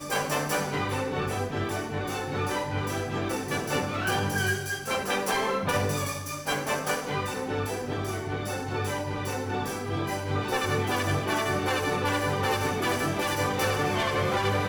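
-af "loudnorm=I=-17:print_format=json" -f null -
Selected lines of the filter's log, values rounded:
"input_i" : "-28.0",
"input_tp" : "-14.9",
"input_lra" : "3.8",
"input_thresh" : "-38.0",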